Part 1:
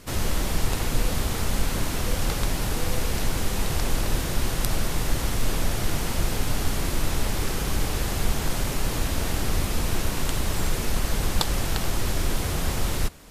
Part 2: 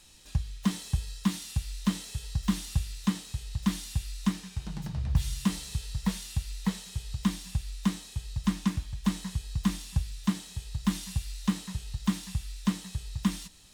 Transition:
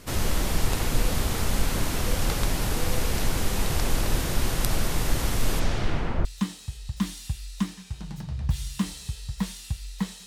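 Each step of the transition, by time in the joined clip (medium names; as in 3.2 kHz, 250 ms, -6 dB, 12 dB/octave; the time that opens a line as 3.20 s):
part 1
5.59–6.25 s: low-pass 7.3 kHz -> 1.3 kHz
6.25 s: go over to part 2 from 2.91 s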